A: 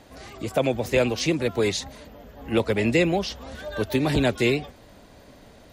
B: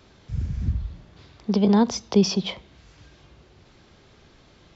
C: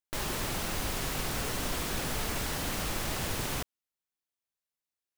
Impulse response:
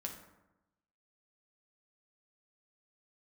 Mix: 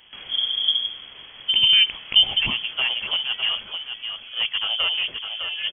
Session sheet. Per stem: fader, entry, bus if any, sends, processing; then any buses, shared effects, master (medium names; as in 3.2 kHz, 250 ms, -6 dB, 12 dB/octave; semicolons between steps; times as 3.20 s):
-1.5 dB, 1.85 s, no send, echo send -7 dB, low-pass 2 kHz 12 dB/octave; one-sided clip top -20 dBFS
+1.5 dB, 0.00 s, no send, no echo send, none
-5.0 dB, 0.00 s, no send, echo send -14.5 dB, auto duck -7 dB, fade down 0.90 s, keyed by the second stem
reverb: none
echo: delay 607 ms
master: frequency inversion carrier 3.3 kHz